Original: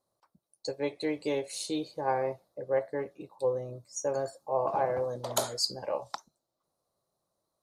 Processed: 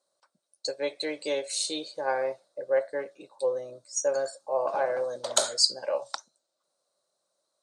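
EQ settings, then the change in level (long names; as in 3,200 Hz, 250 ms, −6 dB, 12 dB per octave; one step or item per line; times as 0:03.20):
loudspeaker in its box 230–9,200 Hz, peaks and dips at 570 Hz +9 dB, 1,500 Hz +8 dB, 3,900 Hz +3 dB, 8,500 Hz +8 dB
parametric band 5,500 Hz +10.5 dB 3 octaves
−4.0 dB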